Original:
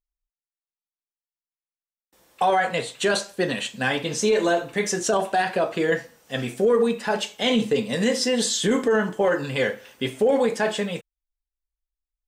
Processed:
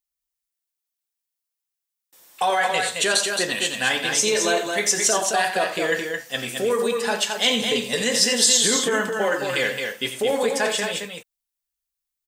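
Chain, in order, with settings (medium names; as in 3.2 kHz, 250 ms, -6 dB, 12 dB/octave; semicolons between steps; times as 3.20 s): tilt EQ +3 dB/octave; on a send: loudspeakers at several distances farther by 30 m -11 dB, 75 m -5 dB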